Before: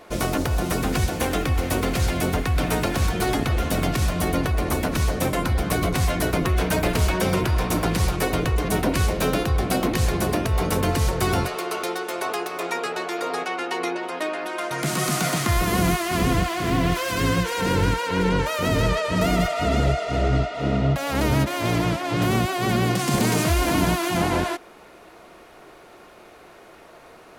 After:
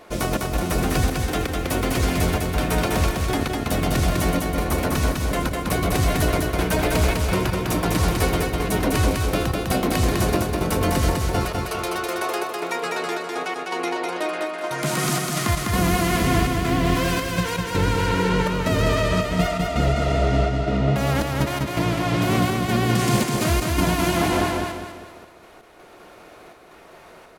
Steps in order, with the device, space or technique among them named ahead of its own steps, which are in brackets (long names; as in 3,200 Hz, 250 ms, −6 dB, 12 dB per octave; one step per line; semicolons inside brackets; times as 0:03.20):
trance gate with a delay (gate pattern "xx.xxx.x.xx" 82 BPM −12 dB; repeating echo 202 ms, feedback 40%, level −3 dB)